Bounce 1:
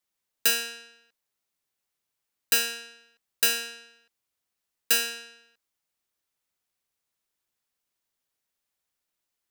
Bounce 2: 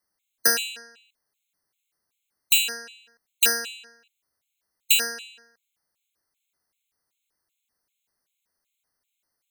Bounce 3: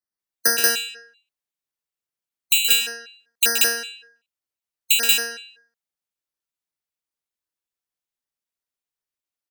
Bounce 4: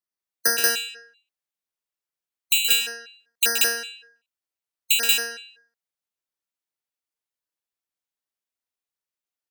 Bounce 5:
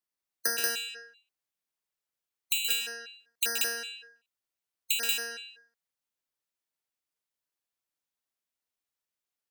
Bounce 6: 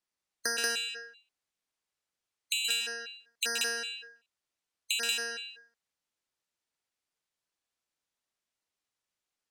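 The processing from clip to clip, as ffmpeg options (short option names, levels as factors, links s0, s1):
-af "afftfilt=real='re*gt(sin(2*PI*2.6*pts/sr)*(1-2*mod(floor(b*sr/1024/2100),2)),0)':imag='im*gt(sin(2*PI*2.6*pts/sr)*(1-2*mod(floor(b*sr/1024/2100),2)),0)':win_size=1024:overlap=0.75,volume=2.11"
-filter_complex "[0:a]asplit=2[s0][s1];[s1]aecho=0:1:125.4|183.7:0.447|1[s2];[s0][s2]amix=inputs=2:normalize=0,afftdn=nr=16:nf=-41,volume=1.12"
-af "bass=f=250:g=-4,treble=f=4000:g=-1,volume=0.841"
-af "acompressor=threshold=0.0224:ratio=2"
-af "lowpass=8900,alimiter=limit=0.1:level=0:latency=1:release=432,volume=1.5"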